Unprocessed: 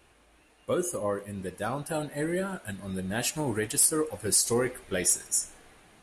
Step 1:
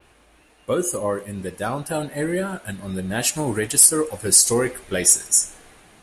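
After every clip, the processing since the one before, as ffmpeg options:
ffmpeg -i in.wav -af "adynamicequalizer=threshold=0.0126:dfrequency=8100:dqfactor=0.79:tfrequency=8100:tqfactor=0.79:attack=5:release=100:ratio=0.375:range=2.5:mode=boostabove:tftype=bell,volume=6dB" out.wav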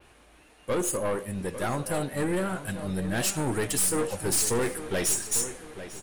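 ffmpeg -i in.wav -filter_complex "[0:a]aeval=exprs='(tanh(14.1*val(0)+0.35)-tanh(0.35))/14.1':channel_layout=same,asplit=2[link_01][link_02];[link_02]adelay=847,lowpass=frequency=3700:poles=1,volume=-12dB,asplit=2[link_03][link_04];[link_04]adelay=847,lowpass=frequency=3700:poles=1,volume=0.39,asplit=2[link_05][link_06];[link_06]adelay=847,lowpass=frequency=3700:poles=1,volume=0.39,asplit=2[link_07][link_08];[link_08]adelay=847,lowpass=frequency=3700:poles=1,volume=0.39[link_09];[link_01][link_03][link_05][link_07][link_09]amix=inputs=5:normalize=0" out.wav

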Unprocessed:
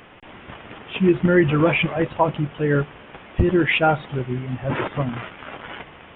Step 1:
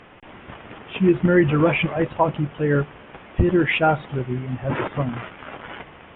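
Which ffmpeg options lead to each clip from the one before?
ffmpeg -i in.wav -af "aemphasis=mode=reproduction:type=50kf" out.wav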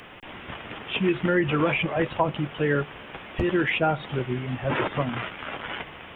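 ffmpeg -i in.wav -filter_complex "[0:a]acrossover=split=290|1000[link_01][link_02][link_03];[link_01]acompressor=threshold=-29dB:ratio=4[link_04];[link_02]acompressor=threshold=-24dB:ratio=4[link_05];[link_03]acompressor=threshold=-31dB:ratio=4[link_06];[link_04][link_05][link_06]amix=inputs=3:normalize=0,crystalizer=i=4:c=0" out.wav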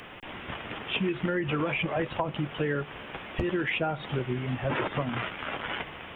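ffmpeg -i in.wav -af "acompressor=threshold=-25dB:ratio=6" out.wav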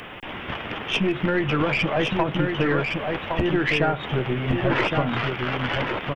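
ffmpeg -i in.wav -af "aeval=exprs='(tanh(10*val(0)+0.4)-tanh(0.4))/10':channel_layout=same,aecho=1:1:1114:0.596,volume=8dB" out.wav

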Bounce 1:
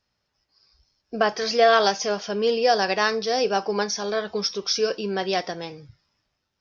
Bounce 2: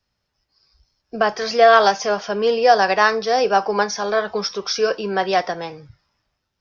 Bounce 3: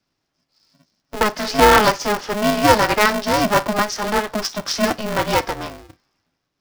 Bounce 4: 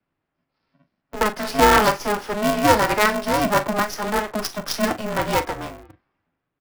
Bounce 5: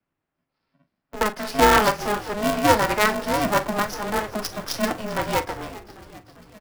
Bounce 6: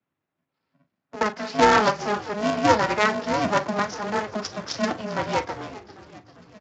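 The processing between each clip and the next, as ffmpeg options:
ffmpeg -i in.wav -filter_complex "[0:a]acrossover=split=210|590|1800[link_01][link_02][link_03][link_04];[link_03]dynaudnorm=framelen=570:gausssize=5:maxgain=11.5dB[link_05];[link_01][link_02][link_05][link_04]amix=inputs=4:normalize=0,lowshelf=frequency=99:gain=7" out.wav
ffmpeg -i in.wav -af "aeval=exprs='val(0)*sgn(sin(2*PI*210*n/s))':channel_layout=same" out.wav
ffmpeg -i in.wav -filter_complex "[0:a]asplit=2[link_01][link_02];[link_02]adelay=41,volume=-12dB[link_03];[link_01][link_03]amix=inputs=2:normalize=0,acrossover=split=130|1100|2900[link_04][link_05][link_06][link_07];[link_07]acrusher=bits=4:dc=4:mix=0:aa=0.000001[link_08];[link_04][link_05][link_06][link_08]amix=inputs=4:normalize=0,volume=-2.5dB" out.wav
ffmpeg -i in.wav -filter_complex "[0:a]aeval=exprs='0.891*(cos(1*acos(clip(val(0)/0.891,-1,1)))-cos(1*PI/2))+0.0282*(cos(7*acos(clip(val(0)/0.891,-1,1)))-cos(7*PI/2))':channel_layout=same,asplit=7[link_01][link_02][link_03][link_04][link_05][link_06][link_07];[link_02]adelay=396,afreqshift=-100,volume=-17.5dB[link_08];[link_03]adelay=792,afreqshift=-200,volume=-21.5dB[link_09];[link_04]adelay=1188,afreqshift=-300,volume=-25.5dB[link_10];[link_05]adelay=1584,afreqshift=-400,volume=-29.5dB[link_11];[link_06]adelay=1980,afreqshift=-500,volume=-33.6dB[link_12];[link_07]adelay=2376,afreqshift=-600,volume=-37.6dB[link_13];[link_01][link_08][link_09][link_10][link_11][link_12][link_13]amix=inputs=7:normalize=0,volume=-1dB" out.wav
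ffmpeg -i in.wav -af "volume=-1dB" -ar 16000 -c:a libspeex -b:a 34k out.spx

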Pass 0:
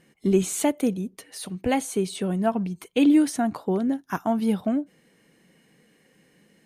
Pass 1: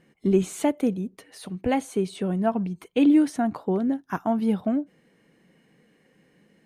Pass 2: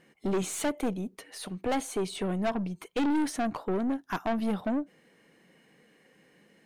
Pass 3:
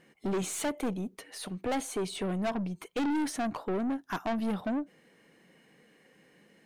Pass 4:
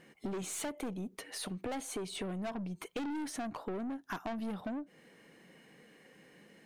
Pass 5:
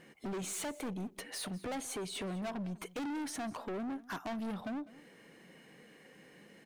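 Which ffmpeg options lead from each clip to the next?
ffmpeg -i in.wav -af "highshelf=frequency=3700:gain=-10" out.wav
ffmpeg -i in.wav -af "lowshelf=frequency=280:gain=-9.5,aeval=exprs='(tanh(25.1*val(0)+0.3)-tanh(0.3))/25.1':channel_layout=same,volume=3.5dB" out.wav
ffmpeg -i in.wav -af "asoftclip=type=tanh:threshold=-25dB" out.wav
ffmpeg -i in.wav -af "acompressor=threshold=-39dB:ratio=6,volume=2dB" out.wav
ffmpeg -i in.wav -af "asoftclip=type=hard:threshold=-38dB,aecho=1:1:200:0.106,volume=1.5dB" out.wav

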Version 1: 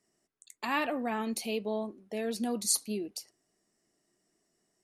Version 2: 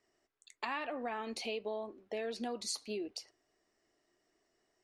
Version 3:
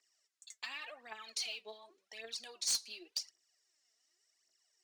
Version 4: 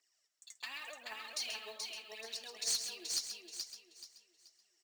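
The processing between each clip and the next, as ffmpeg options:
ffmpeg -i in.wav -af "lowpass=4300,equalizer=frequency=180:width_type=o:width=0.98:gain=-14.5,acompressor=threshold=-38dB:ratio=6,volume=3dB" out.wav
ffmpeg -i in.wav -af "bandpass=frequency=6400:width_type=q:width=1.2:csg=0,aphaser=in_gain=1:out_gain=1:delay=4.7:decay=0.68:speed=0.89:type=triangular,aeval=exprs='0.0266*(abs(mod(val(0)/0.0266+3,4)-2)-1)':channel_layout=same,volume=6dB" out.wav
ffmpeg -i in.wav -filter_complex "[0:a]asplit=2[link_01][link_02];[link_02]aecho=0:1:430|860|1290|1720:0.631|0.196|0.0606|0.0188[link_03];[link_01][link_03]amix=inputs=2:normalize=0,acrusher=bits=4:mode=log:mix=0:aa=0.000001,asplit=2[link_04][link_05];[link_05]aecho=0:1:133:0.355[link_06];[link_04][link_06]amix=inputs=2:normalize=0,volume=-1dB" out.wav

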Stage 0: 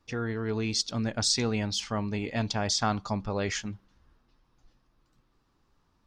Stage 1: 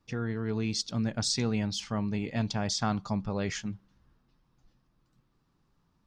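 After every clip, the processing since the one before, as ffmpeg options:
ffmpeg -i in.wav -af "equalizer=frequency=160:width_type=o:width=0.98:gain=9,volume=-4dB" out.wav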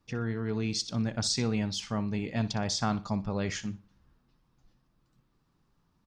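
ffmpeg -i in.wav -af "aecho=1:1:61|122|183:0.158|0.0412|0.0107" out.wav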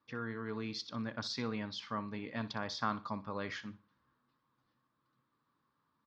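ffmpeg -i in.wav -af "highpass=180,equalizer=frequency=180:width_type=q:width=4:gain=-10,equalizer=frequency=380:width_type=q:width=4:gain=-6,equalizer=frequency=730:width_type=q:width=4:gain=-7,equalizer=frequency=1100:width_type=q:width=4:gain=8,equalizer=frequency=1600:width_type=q:width=4:gain=3,equalizer=frequency=2700:width_type=q:width=4:gain=-5,lowpass=frequency=4300:width=0.5412,lowpass=frequency=4300:width=1.3066,volume=-4dB" out.wav

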